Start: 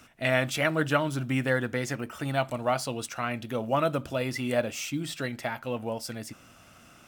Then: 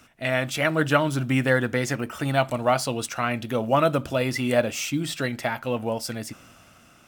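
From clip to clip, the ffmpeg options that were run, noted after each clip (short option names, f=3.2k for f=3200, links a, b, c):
-af "dynaudnorm=f=120:g=11:m=5.5dB"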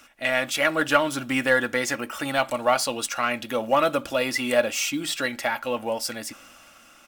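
-filter_complex "[0:a]equalizer=f=97:w=0.32:g=-13.5,asplit=2[a][b];[b]asoftclip=type=tanh:threshold=-21.5dB,volume=-6dB[c];[a][c]amix=inputs=2:normalize=0,aecho=1:1:3.6:0.39"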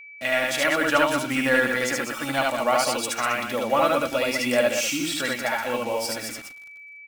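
-af "aecho=1:1:72.89|195.3:0.891|0.447,acrusher=bits=5:mix=0:aa=0.5,aeval=exprs='val(0)+0.0112*sin(2*PI*2300*n/s)':c=same,volume=-2dB"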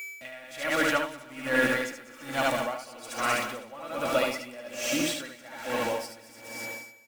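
-af "aeval=exprs='val(0)+0.5*0.0211*sgn(val(0))':c=same,aecho=1:1:256|512|768|1024|1280|1536|1792:0.355|0.209|0.124|0.0729|0.043|0.0254|0.015,aeval=exprs='val(0)*pow(10,-21*(0.5-0.5*cos(2*PI*1.2*n/s))/20)':c=same,volume=-2.5dB"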